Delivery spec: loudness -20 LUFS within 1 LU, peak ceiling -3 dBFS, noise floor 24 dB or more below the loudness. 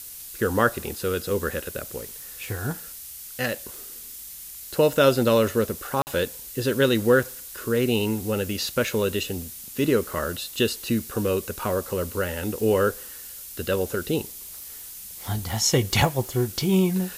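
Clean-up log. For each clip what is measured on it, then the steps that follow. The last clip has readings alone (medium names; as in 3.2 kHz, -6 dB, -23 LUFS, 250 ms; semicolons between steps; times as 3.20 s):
dropouts 1; longest dropout 49 ms; noise floor -40 dBFS; noise floor target -49 dBFS; loudness -24.5 LUFS; peak level -6.0 dBFS; loudness target -20.0 LUFS
-> interpolate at 6.02 s, 49 ms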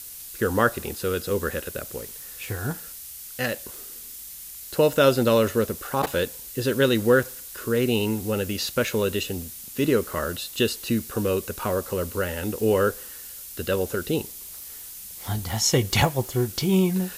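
dropouts 0; noise floor -40 dBFS; noise floor target -49 dBFS
-> noise print and reduce 9 dB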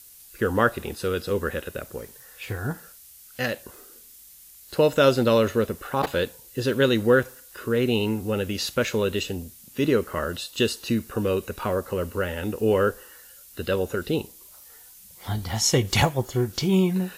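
noise floor -49 dBFS; loudness -24.5 LUFS; peak level -6.0 dBFS; loudness target -20.0 LUFS
-> trim +4.5 dB; peak limiter -3 dBFS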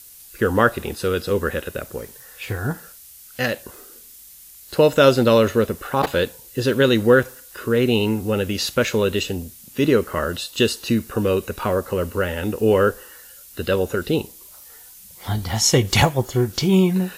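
loudness -20.0 LUFS; peak level -3.0 dBFS; noise floor -44 dBFS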